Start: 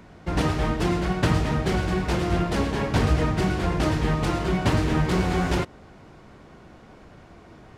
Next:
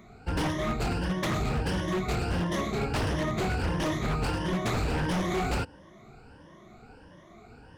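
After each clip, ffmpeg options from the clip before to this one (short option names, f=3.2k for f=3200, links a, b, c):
-af "afftfilt=real='re*pow(10,17/40*sin(2*PI*(1.2*log(max(b,1)*sr/1024/100)/log(2)-(1.5)*(pts-256)/sr)))':imag='im*pow(10,17/40*sin(2*PI*(1.2*log(max(b,1)*sr/1024/100)/log(2)-(1.5)*(pts-256)/sr)))':win_size=1024:overlap=0.75,aeval=exprs='0.158*(abs(mod(val(0)/0.158+3,4)-2)-1)':c=same,volume=-6.5dB"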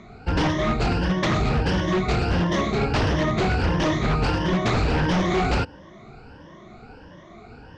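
-af "lowpass=f=6.1k:w=0.5412,lowpass=f=6.1k:w=1.3066,volume=7dB"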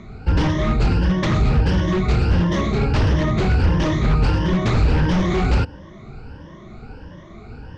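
-filter_complex "[0:a]lowshelf=f=160:g=11,bandreject=f=710:w=12,asplit=2[a][b];[b]alimiter=limit=-18dB:level=0:latency=1:release=21,volume=-0.5dB[c];[a][c]amix=inputs=2:normalize=0,volume=-4dB"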